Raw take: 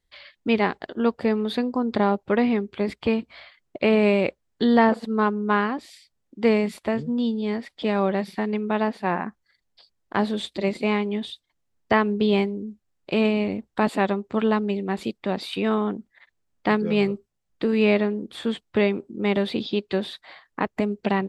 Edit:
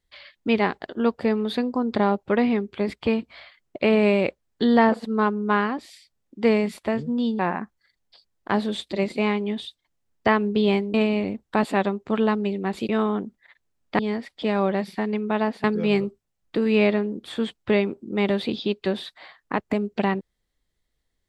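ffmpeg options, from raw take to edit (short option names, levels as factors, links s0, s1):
-filter_complex "[0:a]asplit=6[s0][s1][s2][s3][s4][s5];[s0]atrim=end=7.392[s6];[s1]atrim=start=9.038:end=12.592[s7];[s2]atrim=start=13.178:end=15.132[s8];[s3]atrim=start=15.608:end=16.712[s9];[s4]atrim=start=7.388:end=9.042[s10];[s5]atrim=start=16.708[s11];[s6][s7]acrossfade=d=0.004:c1=hsin:c2=hsin[s12];[s12][s8]acrossfade=d=0.004:c1=hsin:c2=hsin[s13];[s13][s9]acrossfade=d=0.004:c1=hsin:c2=hsin[s14];[s14][s10]acrossfade=d=0.004:c1=hsin:c2=hsin[s15];[s15][s11]acrossfade=d=0.004:c1=hsin:c2=hsin"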